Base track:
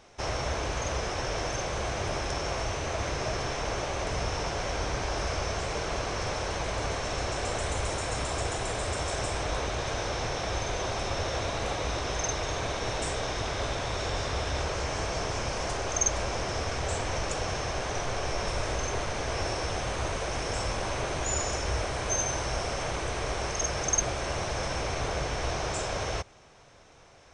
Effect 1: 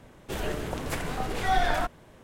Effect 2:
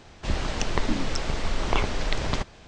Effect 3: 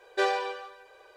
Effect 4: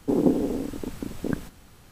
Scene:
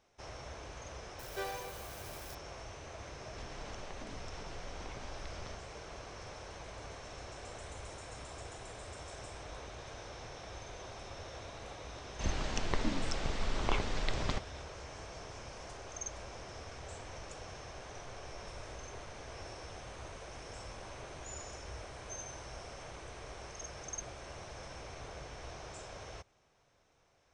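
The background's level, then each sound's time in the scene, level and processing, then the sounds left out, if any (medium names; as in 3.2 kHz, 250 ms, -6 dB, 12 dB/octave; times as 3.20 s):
base track -16 dB
1.19 s: add 3 -14 dB + zero-crossing glitches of -26.5 dBFS
3.13 s: add 2 -17.5 dB + compression, threshold -25 dBFS
11.96 s: add 2 -8 dB
not used: 1, 4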